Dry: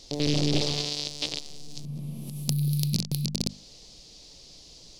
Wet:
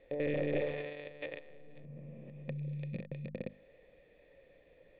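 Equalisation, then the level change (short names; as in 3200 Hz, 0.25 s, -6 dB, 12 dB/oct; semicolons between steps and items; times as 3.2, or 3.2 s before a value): vocal tract filter e; bell 1500 Hz +8 dB 1.3 oct; +6.0 dB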